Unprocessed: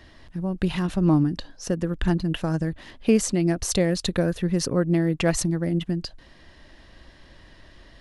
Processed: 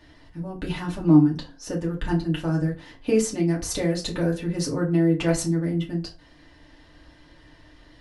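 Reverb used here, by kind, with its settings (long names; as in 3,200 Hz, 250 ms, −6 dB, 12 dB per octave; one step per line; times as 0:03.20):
feedback delay network reverb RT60 0.31 s, low-frequency decay 1.05×, high-frequency decay 0.7×, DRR −3.5 dB
level −6.5 dB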